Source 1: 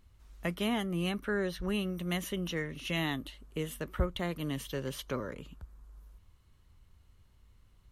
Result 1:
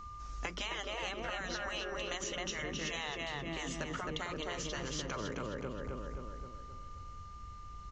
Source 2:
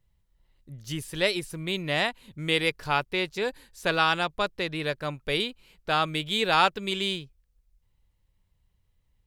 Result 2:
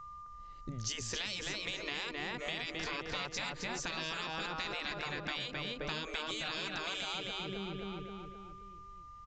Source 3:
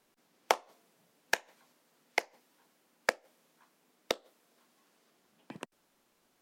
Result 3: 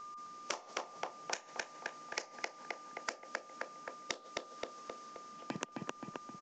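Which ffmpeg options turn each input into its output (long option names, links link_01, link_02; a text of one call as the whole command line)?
ffmpeg -i in.wav -filter_complex "[0:a]alimiter=limit=-20.5dB:level=0:latency=1:release=18,aexciter=amount=2.7:drive=3.7:freq=5000,aeval=exprs='val(0)+0.00178*sin(2*PI*1200*n/s)':channel_layout=same,asplit=2[link_01][link_02];[link_02]adelay=263,lowpass=frequency=3200:poles=1,volume=-3dB,asplit=2[link_03][link_04];[link_04]adelay=263,lowpass=frequency=3200:poles=1,volume=0.5,asplit=2[link_05][link_06];[link_06]adelay=263,lowpass=frequency=3200:poles=1,volume=0.5,asplit=2[link_07][link_08];[link_08]adelay=263,lowpass=frequency=3200:poles=1,volume=0.5,asplit=2[link_09][link_10];[link_10]adelay=263,lowpass=frequency=3200:poles=1,volume=0.5,asplit=2[link_11][link_12];[link_12]adelay=263,lowpass=frequency=3200:poles=1,volume=0.5,asplit=2[link_13][link_14];[link_14]adelay=263,lowpass=frequency=3200:poles=1,volume=0.5[link_15];[link_01][link_03][link_05][link_07][link_09][link_11][link_13][link_15]amix=inputs=8:normalize=0,aresample=16000,aresample=44100,afftfilt=real='re*lt(hypot(re,im),0.0891)':imag='im*lt(hypot(re,im),0.0891)':win_size=1024:overlap=0.75,acompressor=threshold=-45dB:ratio=6,volume=9dB" out.wav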